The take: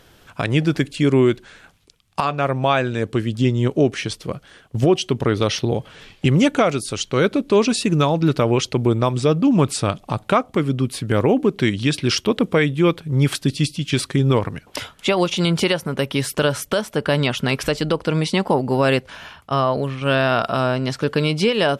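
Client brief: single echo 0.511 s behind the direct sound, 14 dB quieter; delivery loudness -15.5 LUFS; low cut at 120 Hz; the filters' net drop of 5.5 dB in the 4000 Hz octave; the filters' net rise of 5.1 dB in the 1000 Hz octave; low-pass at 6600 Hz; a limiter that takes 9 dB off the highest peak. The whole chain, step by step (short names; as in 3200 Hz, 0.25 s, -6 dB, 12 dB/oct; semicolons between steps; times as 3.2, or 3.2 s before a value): HPF 120 Hz; LPF 6600 Hz; bell 1000 Hz +7 dB; bell 4000 Hz -8 dB; limiter -9.5 dBFS; echo 0.511 s -14 dB; gain +6.5 dB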